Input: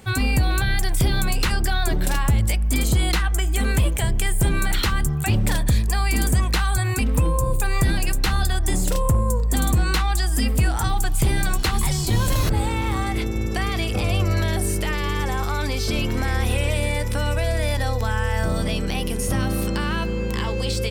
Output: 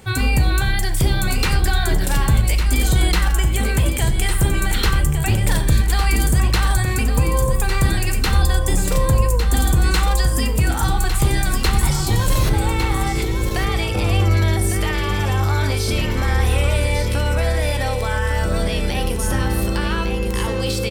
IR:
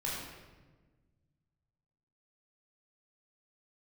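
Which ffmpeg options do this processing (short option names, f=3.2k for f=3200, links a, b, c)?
-filter_complex "[0:a]aecho=1:1:1155:0.422,asplit=2[a][b];[1:a]atrim=start_sample=2205,afade=t=out:st=0.18:d=0.01,atrim=end_sample=8379[c];[b][c]afir=irnorm=-1:irlink=0,volume=-9dB[d];[a][d]amix=inputs=2:normalize=0"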